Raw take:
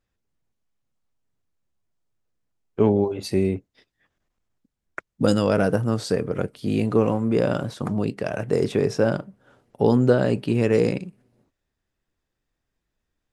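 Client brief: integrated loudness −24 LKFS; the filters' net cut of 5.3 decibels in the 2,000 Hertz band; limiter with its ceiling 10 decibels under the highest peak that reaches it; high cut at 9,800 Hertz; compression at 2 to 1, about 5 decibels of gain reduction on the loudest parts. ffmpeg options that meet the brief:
ffmpeg -i in.wav -af "lowpass=9800,equalizer=frequency=2000:width_type=o:gain=-8,acompressor=threshold=-22dB:ratio=2,volume=6.5dB,alimiter=limit=-12.5dB:level=0:latency=1" out.wav

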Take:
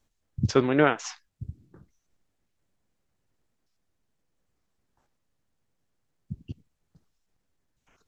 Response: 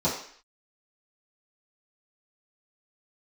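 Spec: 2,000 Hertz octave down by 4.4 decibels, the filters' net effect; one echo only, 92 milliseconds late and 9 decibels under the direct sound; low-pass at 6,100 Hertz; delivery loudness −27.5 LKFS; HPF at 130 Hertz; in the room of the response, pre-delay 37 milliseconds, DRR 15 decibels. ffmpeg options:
-filter_complex "[0:a]highpass=130,lowpass=6100,equalizer=frequency=2000:width_type=o:gain=-6.5,aecho=1:1:92:0.355,asplit=2[link_01][link_02];[1:a]atrim=start_sample=2205,adelay=37[link_03];[link_02][link_03]afir=irnorm=-1:irlink=0,volume=-27dB[link_04];[link_01][link_04]amix=inputs=2:normalize=0,volume=-2.5dB"

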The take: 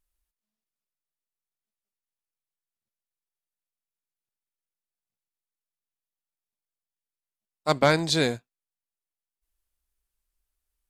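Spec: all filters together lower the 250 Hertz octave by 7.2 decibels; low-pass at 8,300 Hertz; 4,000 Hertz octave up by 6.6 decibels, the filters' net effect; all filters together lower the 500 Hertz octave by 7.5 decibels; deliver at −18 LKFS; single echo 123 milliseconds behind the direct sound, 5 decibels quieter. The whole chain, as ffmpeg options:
ffmpeg -i in.wav -af "lowpass=8300,equalizer=frequency=250:width_type=o:gain=-8.5,equalizer=frequency=500:width_type=o:gain=-7.5,equalizer=frequency=4000:width_type=o:gain=7.5,aecho=1:1:123:0.562,volume=4dB" out.wav

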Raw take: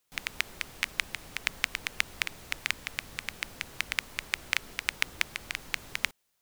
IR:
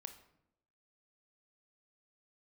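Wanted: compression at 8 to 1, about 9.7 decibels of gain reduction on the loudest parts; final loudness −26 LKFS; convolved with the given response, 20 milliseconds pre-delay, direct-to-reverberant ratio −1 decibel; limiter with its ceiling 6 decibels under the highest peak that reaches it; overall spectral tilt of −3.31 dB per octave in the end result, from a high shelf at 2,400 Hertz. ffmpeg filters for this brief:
-filter_complex "[0:a]highshelf=frequency=2400:gain=-7.5,acompressor=threshold=-37dB:ratio=8,alimiter=limit=-20.5dB:level=0:latency=1,asplit=2[link_01][link_02];[1:a]atrim=start_sample=2205,adelay=20[link_03];[link_02][link_03]afir=irnorm=-1:irlink=0,volume=6dB[link_04];[link_01][link_04]amix=inputs=2:normalize=0,volume=19dB"

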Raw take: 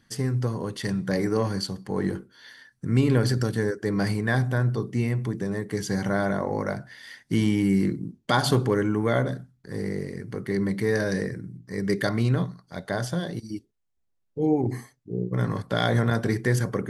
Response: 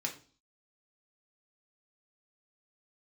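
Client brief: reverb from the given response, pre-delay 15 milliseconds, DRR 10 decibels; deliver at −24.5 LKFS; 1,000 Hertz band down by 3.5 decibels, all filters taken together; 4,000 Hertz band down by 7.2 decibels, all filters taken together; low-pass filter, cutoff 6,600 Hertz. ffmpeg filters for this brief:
-filter_complex "[0:a]lowpass=6600,equalizer=frequency=1000:width_type=o:gain=-4.5,equalizer=frequency=4000:width_type=o:gain=-8,asplit=2[link_01][link_02];[1:a]atrim=start_sample=2205,adelay=15[link_03];[link_02][link_03]afir=irnorm=-1:irlink=0,volume=-12dB[link_04];[link_01][link_04]amix=inputs=2:normalize=0,volume=2.5dB"

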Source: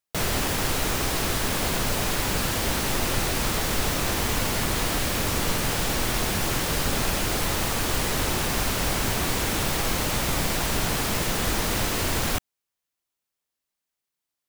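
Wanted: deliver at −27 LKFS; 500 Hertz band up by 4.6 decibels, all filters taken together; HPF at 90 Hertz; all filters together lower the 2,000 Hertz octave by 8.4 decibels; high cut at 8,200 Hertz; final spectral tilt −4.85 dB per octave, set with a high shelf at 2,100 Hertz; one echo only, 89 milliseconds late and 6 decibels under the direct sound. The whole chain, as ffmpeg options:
ffmpeg -i in.wav -af "highpass=90,lowpass=8200,equalizer=frequency=500:width_type=o:gain=6.5,equalizer=frequency=2000:width_type=o:gain=-7.5,highshelf=frequency=2100:gain=-6.5,aecho=1:1:89:0.501" out.wav

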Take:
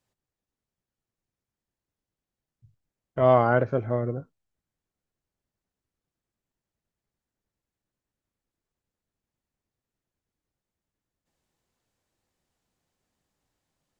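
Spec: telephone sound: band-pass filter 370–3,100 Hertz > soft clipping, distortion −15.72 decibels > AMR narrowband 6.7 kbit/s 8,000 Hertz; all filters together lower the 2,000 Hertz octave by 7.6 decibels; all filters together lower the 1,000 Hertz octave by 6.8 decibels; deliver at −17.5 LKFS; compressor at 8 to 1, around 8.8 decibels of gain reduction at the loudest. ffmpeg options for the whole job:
ffmpeg -i in.wav -af "equalizer=frequency=1000:width_type=o:gain=-8,equalizer=frequency=2000:width_type=o:gain=-6.5,acompressor=threshold=-25dB:ratio=8,highpass=370,lowpass=3100,asoftclip=threshold=-27dB,volume=21dB" -ar 8000 -c:a libopencore_amrnb -b:a 6700 out.amr

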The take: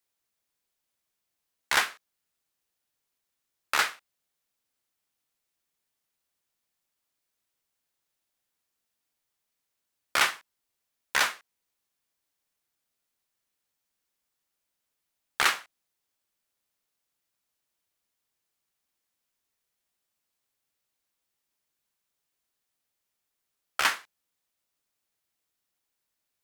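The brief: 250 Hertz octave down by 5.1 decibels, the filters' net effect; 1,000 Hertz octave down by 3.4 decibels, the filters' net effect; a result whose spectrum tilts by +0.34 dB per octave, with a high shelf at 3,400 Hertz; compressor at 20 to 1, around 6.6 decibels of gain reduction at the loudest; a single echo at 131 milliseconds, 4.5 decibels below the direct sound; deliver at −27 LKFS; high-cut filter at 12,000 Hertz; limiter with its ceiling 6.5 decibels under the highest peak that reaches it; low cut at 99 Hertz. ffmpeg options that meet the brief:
ffmpeg -i in.wav -af "highpass=99,lowpass=12000,equalizer=frequency=250:width_type=o:gain=-7,equalizer=frequency=1000:width_type=o:gain=-5,highshelf=frequency=3400:gain=4.5,acompressor=threshold=-24dB:ratio=20,alimiter=limit=-15.5dB:level=0:latency=1,aecho=1:1:131:0.596,volume=6dB" out.wav

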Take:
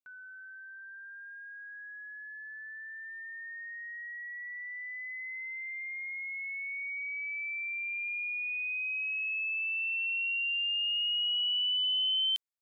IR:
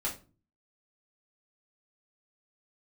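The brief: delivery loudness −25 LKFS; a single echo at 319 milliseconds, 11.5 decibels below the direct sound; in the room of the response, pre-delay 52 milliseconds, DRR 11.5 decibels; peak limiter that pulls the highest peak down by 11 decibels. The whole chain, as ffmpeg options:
-filter_complex "[0:a]alimiter=level_in=12.5dB:limit=-24dB:level=0:latency=1,volume=-12.5dB,aecho=1:1:319:0.266,asplit=2[link_01][link_02];[1:a]atrim=start_sample=2205,adelay=52[link_03];[link_02][link_03]afir=irnorm=-1:irlink=0,volume=-15.5dB[link_04];[link_01][link_04]amix=inputs=2:normalize=0,volume=12.5dB"

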